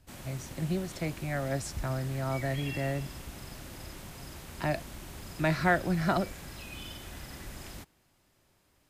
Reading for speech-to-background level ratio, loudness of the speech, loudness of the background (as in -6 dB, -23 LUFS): 11.5 dB, -32.5 LUFS, -44.0 LUFS